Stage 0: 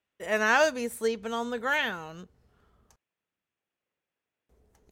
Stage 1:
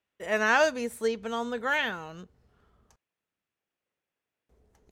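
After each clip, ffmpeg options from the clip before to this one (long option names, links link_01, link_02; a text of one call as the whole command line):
ffmpeg -i in.wav -af "highshelf=frequency=10000:gain=-7.5" out.wav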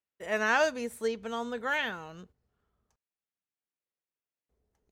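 ffmpeg -i in.wav -af "agate=range=-10dB:threshold=-52dB:ratio=16:detection=peak,volume=-3dB" out.wav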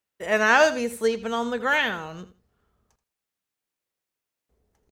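ffmpeg -i in.wav -af "aecho=1:1:81|162:0.188|0.0358,volume=8dB" out.wav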